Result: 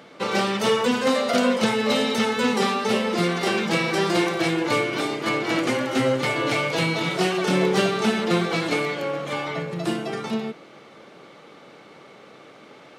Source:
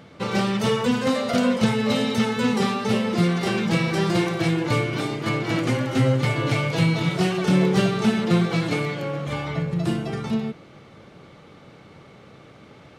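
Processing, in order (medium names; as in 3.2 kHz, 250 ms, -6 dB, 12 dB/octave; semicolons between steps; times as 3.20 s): high-pass 290 Hz 12 dB/octave; trim +3 dB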